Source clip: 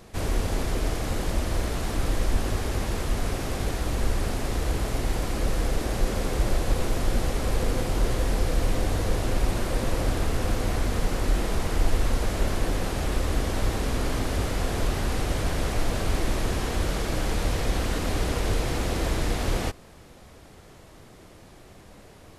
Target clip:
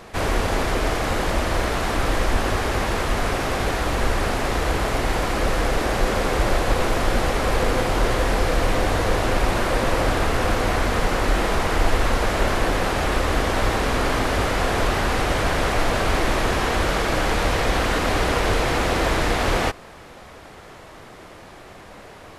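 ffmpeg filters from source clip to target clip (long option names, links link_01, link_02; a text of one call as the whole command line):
ffmpeg -i in.wav -af "equalizer=frequency=1300:width=0.33:gain=10.5,volume=1.5dB" out.wav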